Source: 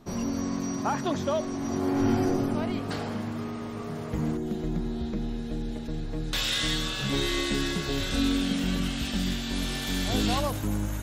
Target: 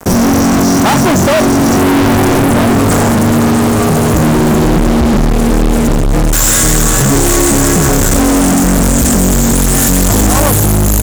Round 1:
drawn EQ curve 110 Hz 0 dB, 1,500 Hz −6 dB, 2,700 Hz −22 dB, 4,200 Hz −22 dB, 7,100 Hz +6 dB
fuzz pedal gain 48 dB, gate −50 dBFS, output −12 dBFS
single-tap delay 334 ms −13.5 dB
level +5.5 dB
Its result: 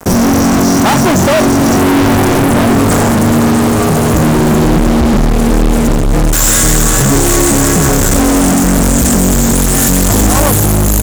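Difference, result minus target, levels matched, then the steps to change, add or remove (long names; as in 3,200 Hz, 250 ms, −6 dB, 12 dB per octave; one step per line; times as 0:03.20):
echo-to-direct +7 dB
change: single-tap delay 334 ms −20.5 dB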